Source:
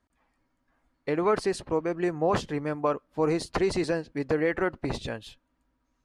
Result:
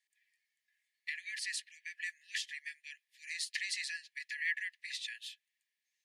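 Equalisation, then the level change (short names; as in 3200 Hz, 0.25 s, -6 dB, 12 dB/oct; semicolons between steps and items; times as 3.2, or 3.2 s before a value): Chebyshev high-pass 1700 Hz, order 10; +1.0 dB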